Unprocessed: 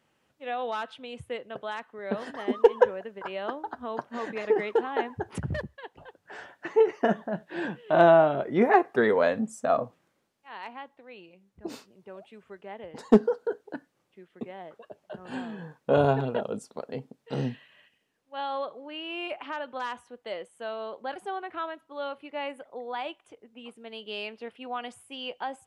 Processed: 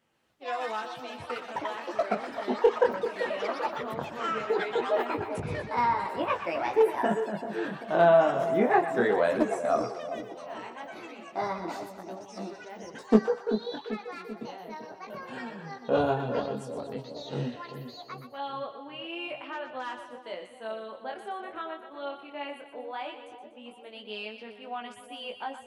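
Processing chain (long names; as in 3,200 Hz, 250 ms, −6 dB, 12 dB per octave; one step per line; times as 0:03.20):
chorus effect 0.16 Hz, delay 17.5 ms, depth 7.6 ms
delay with pitch and tempo change per echo 121 ms, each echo +6 semitones, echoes 3, each echo −6 dB
echo with a time of its own for lows and highs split 810 Hz, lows 389 ms, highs 122 ms, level −9.5 dB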